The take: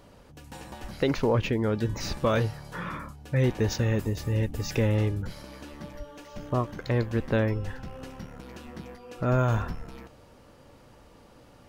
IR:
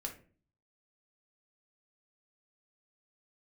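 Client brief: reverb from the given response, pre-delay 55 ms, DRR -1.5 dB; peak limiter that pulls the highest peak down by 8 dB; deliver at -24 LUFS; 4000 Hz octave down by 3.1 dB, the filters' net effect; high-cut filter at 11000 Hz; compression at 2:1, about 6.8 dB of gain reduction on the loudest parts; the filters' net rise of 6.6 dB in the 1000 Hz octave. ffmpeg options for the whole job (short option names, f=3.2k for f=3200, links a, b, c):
-filter_complex "[0:a]lowpass=11k,equalizer=f=1k:t=o:g=8.5,equalizer=f=4k:t=o:g=-4.5,acompressor=threshold=-30dB:ratio=2,alimiter=limit=-23.5dB:level=0:latency=1,asplit=2[a][b];[1:a]atrim=start_sample=2205,adelay=55[c];[b][c]afir=irnorm=-1:irlink=0,volume=2.5dB[d];[a][d]amix=inputs=2:normalize=0,volume=7dB"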